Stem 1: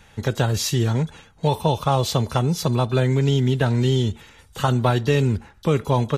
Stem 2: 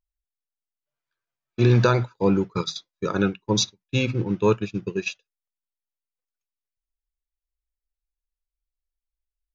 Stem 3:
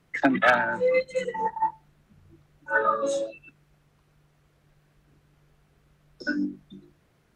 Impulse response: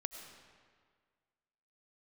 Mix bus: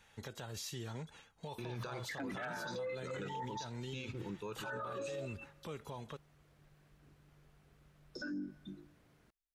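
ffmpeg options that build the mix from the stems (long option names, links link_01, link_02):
-filter_complex "[0:a]lowshelf=frequency=370:gain=-8.5,acompressor=threshold=-28dB:ratio=6,volume=-12dB[link_01];[1:a]lowshelf=frequency=470:gain=-8.5,volume=-7.5dB[link_02];[2:a]adelay=1950,volume=-3.5dB,asplit=2[link_03][link_04];[link_04]volume=-22dB[link_05];[link_02][link_03]amix=inputs=2:normalize=0,acompressor=threshold=-36dB:ratio=2.5,volume=0dB[link_06];[3:a]atrim=start_sample=2205[link_07];[link_05][link_07]afir=irnorm=-1:irlink=0[link_08];[link_01][link_06][link_08]amix=inputs=3:normalize=0,alimiter=level_in=10.5dB:limit=-24dB:level=0:latency=1:release=27,volume=-10.5dB"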